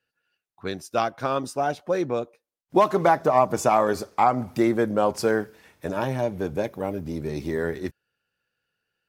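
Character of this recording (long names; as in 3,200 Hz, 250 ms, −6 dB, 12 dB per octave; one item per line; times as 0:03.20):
background noise floor −85 dBFS
spectral slope −5.0 dB per octave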